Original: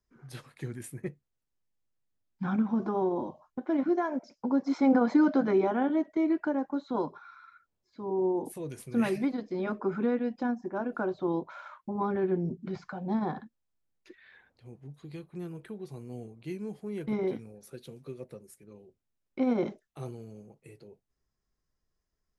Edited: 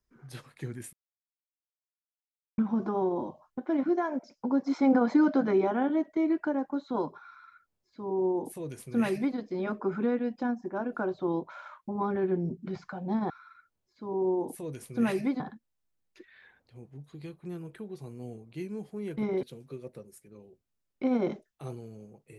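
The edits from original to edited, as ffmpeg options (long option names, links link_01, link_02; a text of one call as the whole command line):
ffmpeg -i in.wav -filter_complex "[0:a]asplit=6[link_01][link_02][link_03][link_04][link_05][link_06];[link_01]atrim=end=0.93,asetpts=PTS-STARTPTS,afade=type=out:start_time=0.926:duration=0.004:curve=hsin[link_07];[link_02]atrim=start=0.93:end=2.58,asetpts=PTS-STARTPTS,volume=0[link_08];[link_03]atrim=start=2.58:end=13.302,asetpts=PTS-STARTPTS,afade=type=in:duration=0.004:curve=hsin[link_09];[link_04]atrim=start=7.268:end=9.372[link_10];[link_05]atrim=start=13.298:end=17.332[link_11];[link_06]atrim=start=17.788[link_12];[link_07][link_08][link_09]concat=n=3:v=0:a=1[link_13];[link_13][link_10]acrossfade=duration=0.004:curve1=hsin:curve2=hsin[link_14];[link_14][link_11]acrossfade=duration=0.004:curve1=hsin:curve2=hsin[link_15];[link_15][link_12]acrossfade=duration=0.004:curve1=hsin:curve2=hsin" out.wav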